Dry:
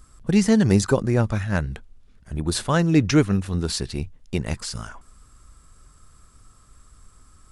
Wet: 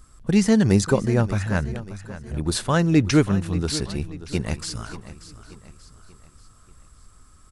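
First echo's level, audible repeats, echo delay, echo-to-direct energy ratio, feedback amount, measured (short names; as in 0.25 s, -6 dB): -14.5 dB, 3, 0.584 s, -13.5 dB, 45%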